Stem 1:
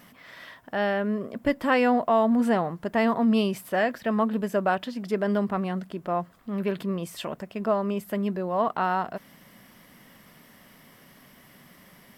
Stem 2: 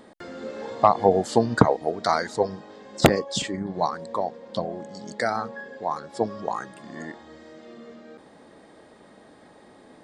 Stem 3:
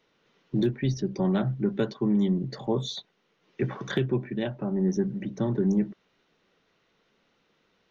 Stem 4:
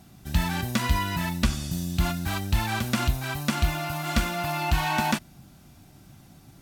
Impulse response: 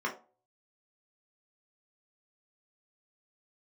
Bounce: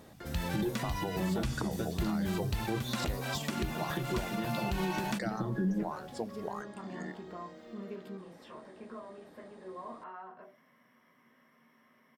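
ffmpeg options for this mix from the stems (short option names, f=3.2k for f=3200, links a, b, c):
-filter_complex "[0:a]bandreject=f=60.55:t=h:w=4,bandreject=f=121.1:t=h:w=4,bandreject=f=181.65:t=h:w=4,bandreject=f=242.2:t=h:w=4,bandreject=f=302.75:t=h:w=4,bandreject=f=363.3:t=h:w=4,bandreject=f=423.85:t=h:w=4,bandreject=f=484.4:t=h:w=4,bandreject=f=544.95:t=h:w=4,bandreject=f=605.5:t=h:w=4,bandreject=f=666.05:t=h:w=4,acompressor=threshold=-32dB:ratio=6,adelay=1250,volume=-10.5dB,asplit=2[a][b];[b]volume=-8dB[c];[1:a]acompressor=threshold=-29dB:ratio=2,volume=-6.5dB,asplit=2[d][e];[2:a]lowshelf=f=150:g=6.5,aecho=1:1:6:0.76,flanger=delay=8.2:depth=4.3:regen=32:speed=0.41:shape=sinusoidal,volume=-3.5dB[f];[3:a]volume=-6dB[g];[e]apad=whole_len=591891[h];[a][h]sidechaingate=range=-33dB:threshold=-54dB:ratio=16:detection=peak[i];[4:a]atrim=start_sample=2205[j];[c][j]afir=irnorm=-1:irlink=0[k];[i][d][f][g][k]amix=inputs=5:normalize=0,alimiter=limit=-23.5dB:level=0:latency=1:release=228"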